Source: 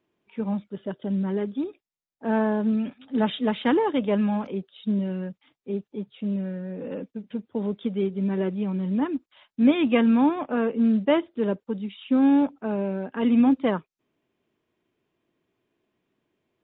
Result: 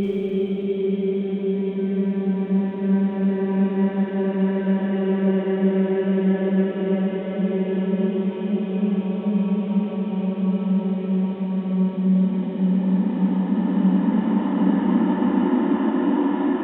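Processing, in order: band noise 190–630 Hz -49 dBFS; Paulstretch 16×, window 0.50 s, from 8.06; Schroeder reverb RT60 2.5 s, combs from 32 ms, DRR 4.5 dB; gain +2.5 dB

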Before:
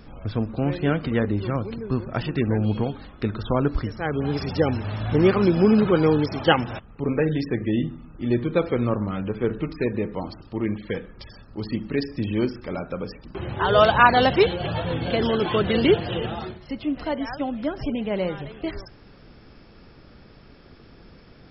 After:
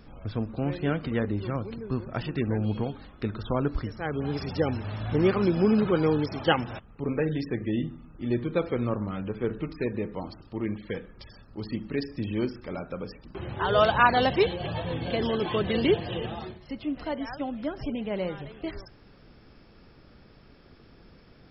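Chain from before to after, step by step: 14.18–16.65 notch 1400 Hz, Q 8.3; gain -5 dB

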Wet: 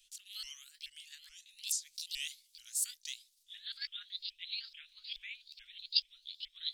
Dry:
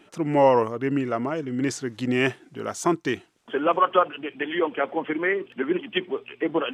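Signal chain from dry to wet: repeated pitch sweeps +8 st, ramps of 0.43 s; inverse Chebyshev band-stop 160–840 Hz, stop band 80 dB; gain +3 dB

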